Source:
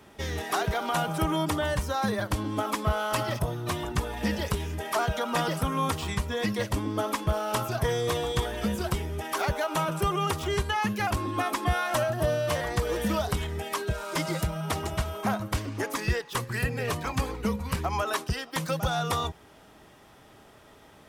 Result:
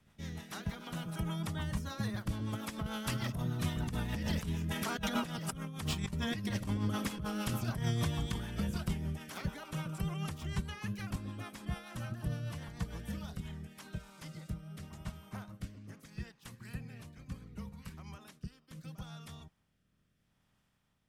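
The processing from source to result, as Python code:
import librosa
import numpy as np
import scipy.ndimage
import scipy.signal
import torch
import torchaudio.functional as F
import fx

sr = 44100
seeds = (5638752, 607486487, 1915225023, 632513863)

y = fx.spec_clip(x, sr, under_db=13)
y = fx.doppler_pass(y, sr, speed_mps=7, closest_m=4.1, pass_at_s=5.51)
y = fx.low_shelf_res(y, sr, hz=260.0, db=11.0, q=1.5)
y = fx.over_compress(y, sr, threshold_db=-33.0, ratio=-1.0)
y = fx.rotary_switch(y, sr, hz=6.7, then_hz=0.75, switch_at_s=13.0)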